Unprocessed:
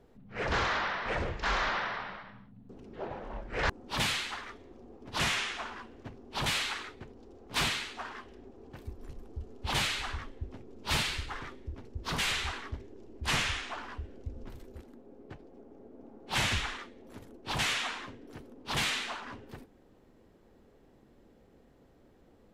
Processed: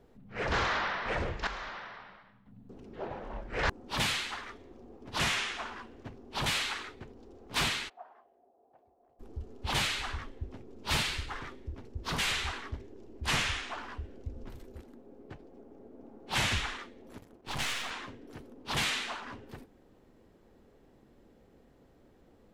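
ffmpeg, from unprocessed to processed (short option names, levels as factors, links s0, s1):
-filter_complex "[0:a]asplit=3[s0][s1][s2];[s0]afade=t=out:st=7.88:d=0.02[s3];[s1]bandpass=f=700:t=q:w=6.8,afade=t=in:st=7.88:d=0.02,afade=t=out:st=9.19:d=0.02[s4];[s2]afade=t=in:st=9.19:d=0.02[s5];[s3][s4][s5]amix=inputs=3:normalize=0,asettb=1/sr,asplit=3[s6][s7][s8];[s6]atrim=end=17.184[s9];[s7]atrim=start=17.18:end=17.91,asetpts=PTS-STARTPTS,afade=t=in:d=0.004:c=qsin,afade=t=out:st=0.726:d=0.004:c=qsin,aeval=exprs='if(lt(val(0),0),0.251*val(0),val(0))':c=same[s10];[s8]atrim=start=17.906[s11];[s9][s10]acrossfade=d=0.004:c1=hsin:c2=qsin[s12];[s12][s11]acrossfade=d=0.004:c1=qsin:c2=hsin,asplit=3[s13][s14][s15];[s13]atrim=end=1.472[s16];[s14]atrim=start=1.468:end=2.462,asetpts=PTS-STARTPTS,volume=0.299[s17];[s15]atrim=start=2.458[s18];[s16][s17]acrossfade=d=0.004:c1=hsin:c2=hsin[s19];[s19][s18]acrossfade=d=0.004:c1=hsin:c2=hsin"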